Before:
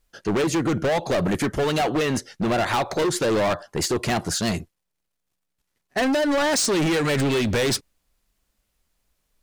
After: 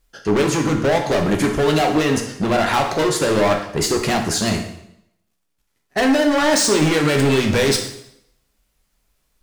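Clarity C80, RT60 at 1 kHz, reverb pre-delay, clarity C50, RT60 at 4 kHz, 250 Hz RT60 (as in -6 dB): 10.0 dB, 0.75 s, 5 ms, 7.0 dB, 0.70 s, 0.80 s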